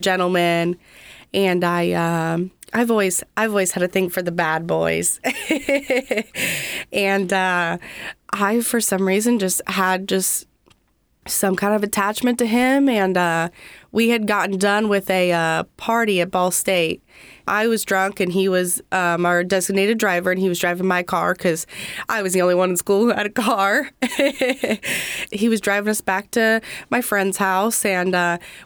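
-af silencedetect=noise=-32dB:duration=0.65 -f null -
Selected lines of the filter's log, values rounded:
silence_start: 10.42
silence_end: 11.26 | silence_duration: 0.84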